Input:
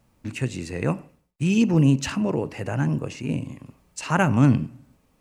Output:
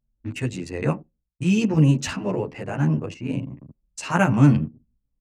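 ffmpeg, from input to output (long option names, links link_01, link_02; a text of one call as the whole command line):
ffmpeg -i in.wav -filter_complex "[0:a]anlmdn=1.58,asplit=2[link_01][link_02];[link_02]adelay=10.8,afreqshift=1.1[link_03];[link_01][link_03]amix=inputs=2:normalize=1,volume=3.5dB" out.wav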